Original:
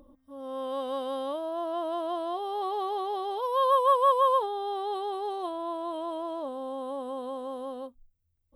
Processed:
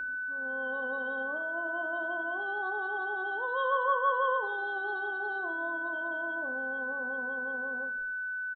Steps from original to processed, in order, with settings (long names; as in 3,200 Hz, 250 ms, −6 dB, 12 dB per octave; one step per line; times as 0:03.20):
0:01.17–0:01.93: low-pass filter 3,800 Hz
spectral peaks only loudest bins 16
on a send: echo with shifted repeats 81 ms, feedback 44%, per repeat −36 Hz, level −17.5 dB
on the sum: coupled-rooms reverb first 0.51 s, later 1.5 s, from −16 dB, DRR 6.5 dB
steady tone 1,500 Hz −25 dBFS
level −7.5 dB